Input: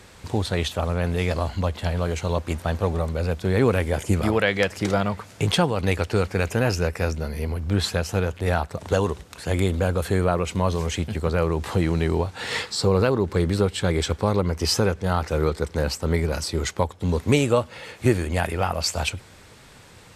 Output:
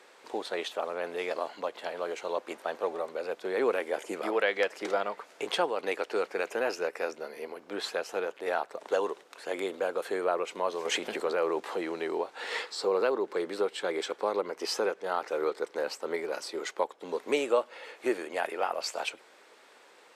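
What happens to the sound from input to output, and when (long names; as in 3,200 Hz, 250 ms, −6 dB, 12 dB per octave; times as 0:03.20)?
0:10.85–0:11.60: envelope flattener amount 100%
whole clip: high-pass filter 360 Hz 24 dB per octave; high-shelf EQ 4,100 Hz −9.5 dB; level −4.5 dB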